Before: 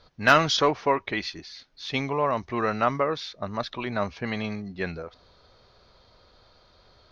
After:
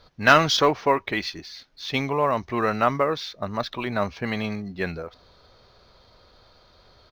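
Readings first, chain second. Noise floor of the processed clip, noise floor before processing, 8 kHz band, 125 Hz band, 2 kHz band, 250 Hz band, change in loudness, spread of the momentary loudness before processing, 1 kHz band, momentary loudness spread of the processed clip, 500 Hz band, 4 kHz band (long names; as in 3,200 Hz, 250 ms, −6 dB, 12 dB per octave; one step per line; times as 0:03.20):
−57 dBFS, −59 dBFS, can't be measured, +2.5 dB, +2.5 dB, +2.5 dB, +2.5 dB, 16 LU, +2.5 dB, 16 LU, +2.5 dB, +2.5 dB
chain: downsampling to 16,000 Hz
level +2.5 dB
IMA ADPCM 176 kbit/s 44,100 Hz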